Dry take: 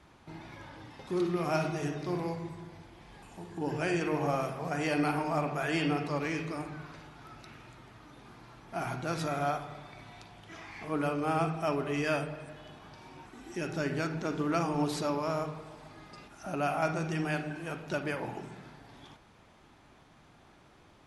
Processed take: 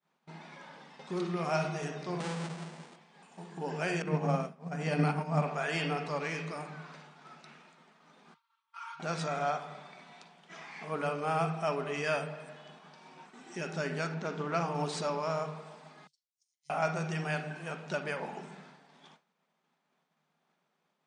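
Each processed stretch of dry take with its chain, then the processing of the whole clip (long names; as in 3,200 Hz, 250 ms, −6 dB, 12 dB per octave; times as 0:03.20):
0:02.20–0:02.96: each half-wave held at its own peak + downward compressor 2 to 1, threshold −34 dBFS
0:04.02–0:05.42: downward expander −27 dBFS + parametric band 190 Hz +15 dB 1.3 octaves
0:08.34–0:09.00: Chebyshev high-pass with heavy ripple 890 Hz, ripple 9 dB + high-shelf EQ 2,200 Hz −7 dB + comb filter 4.4 ms, depth 89%
0:14.14–0:14.75: high-frequency loss of the air 58 metres + highs frequency-modulated by the lows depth 0.1 ms
0:16.07–0:16.70: inverse Chebyshev high-pass filter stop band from 1,800 Hz, stop band 50 dB + ring modulation 500 Hz
whole clip: brick-wall band-pass 150–9,600 Hz; downward expander −48 dBFS; parametric band 310 Hz −14.5 dB 0.27 octaves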